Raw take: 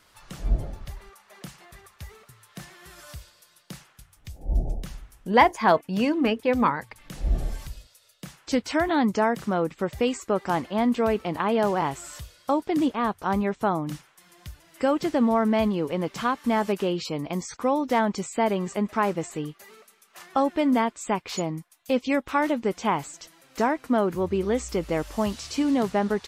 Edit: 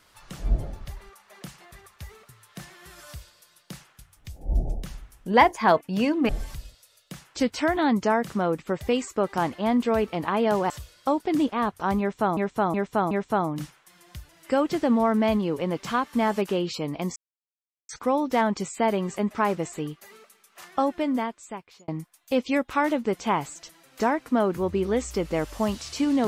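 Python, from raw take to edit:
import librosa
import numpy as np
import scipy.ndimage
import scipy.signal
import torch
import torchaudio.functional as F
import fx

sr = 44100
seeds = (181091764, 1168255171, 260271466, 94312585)

y = fx.edit(x, sr, fx.cut(start_s=6.29, length_s=1.12),
    fx.cut(start_s=11.82, length_s=0.3),
    fx.repeat(start_s=13.42, length_s=0.37, count=4),
    fx.insert_silence(at_s=17.47, length_s=0.73),
    fx.fade_out_span(start_s=20.25, length_s=1.21), tone=tone)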